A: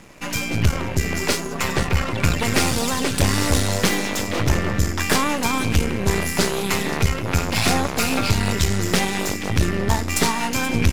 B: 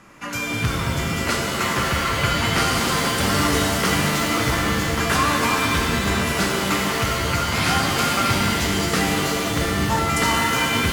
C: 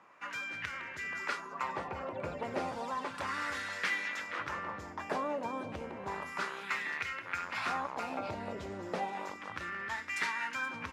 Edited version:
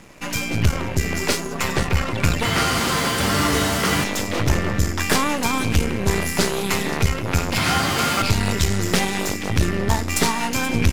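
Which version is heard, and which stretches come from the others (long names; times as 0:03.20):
A
0:02.45–0:04.04: punch in from B
0:07.58–0:08.22: punch in from B
not used: C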